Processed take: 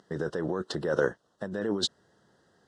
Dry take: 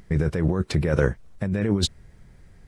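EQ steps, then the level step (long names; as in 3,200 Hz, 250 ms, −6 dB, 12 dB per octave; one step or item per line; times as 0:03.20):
band-pass filter 330–6,400 Hz
Butterworth band-reject 2,300 Hz, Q 1.9
−1.5 dB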